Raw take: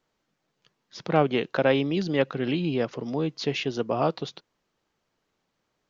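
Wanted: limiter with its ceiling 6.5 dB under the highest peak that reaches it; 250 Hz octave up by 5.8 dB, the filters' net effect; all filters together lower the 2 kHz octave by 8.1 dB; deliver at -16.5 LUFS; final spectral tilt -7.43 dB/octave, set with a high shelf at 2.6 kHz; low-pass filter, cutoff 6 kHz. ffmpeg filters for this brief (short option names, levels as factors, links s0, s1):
-af "lowpass=6000,equalizer=f=250:t=o:g=7.5,equalizer=f=2000:t=o:g=-8.5,highshelf=f=2600:g=-5.5,volume=2.66,alimiter=limit=0.596:level=0:latency=1"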